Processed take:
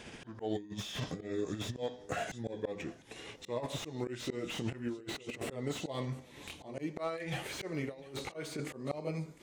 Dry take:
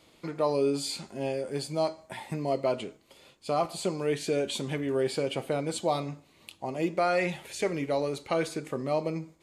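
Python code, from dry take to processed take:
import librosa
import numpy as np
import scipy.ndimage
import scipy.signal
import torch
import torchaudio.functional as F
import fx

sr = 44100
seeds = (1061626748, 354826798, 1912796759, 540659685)

p1 = fx.pitch_glide(x, sr, semitones=-5.5, runs='ending unshifted')
p2 = fx.auto_swell(p1, sr, attack_ms=795.0)
p3 = fx.over_compress(p2, sr, threshold_db=-44.0, ratio=-0.5)
p4 = p3 + fx.echo_single(p3, sr, ms=703, db=-22.0, dry=0)
p5 = fx.slew_limit(p4, sr, full_power_hz=14.0)
y = F.gain(torch.from_numpy(p5), 8.0).numpy()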